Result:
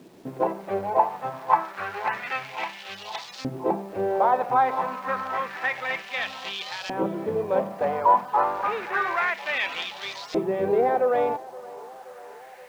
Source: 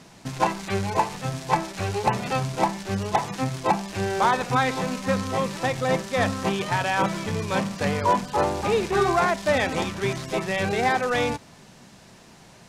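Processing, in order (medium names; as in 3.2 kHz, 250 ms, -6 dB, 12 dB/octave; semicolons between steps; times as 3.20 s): low-pass 11 kHz 12 dB/octave; treble shelf 5.7 kHz -10.5 dB; in parallel at -2.5 dB: peak limiter -17 dBFS, peak gain reduction 7 dB; on the sum: LFO band-pass saw up 0.29 Hz 330–4800 Hz; word length cut 10-bit, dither none; on a send: band-passed feedback delay 524 ms, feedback 76%, band-pass 750 Hz, level -18 dB; on the sum: trim +3 dB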